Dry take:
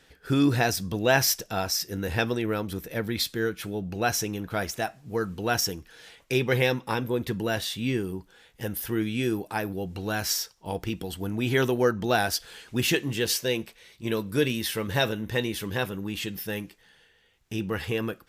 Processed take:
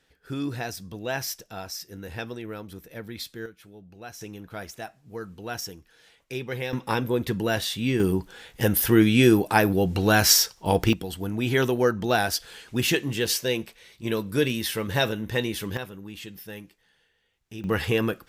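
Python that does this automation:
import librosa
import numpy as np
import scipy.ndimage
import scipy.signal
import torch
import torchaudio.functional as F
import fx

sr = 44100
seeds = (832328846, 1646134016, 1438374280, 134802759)

y = fx.gain(x, sr, db=fx.steps((0.0, -8.5), (3.46, -16.0), (4.21, -8.0), (6.73, 2.5), (8.0, 10.0), (10.93, 1.0), (15.77, -7.5), (17.64, 5.0)))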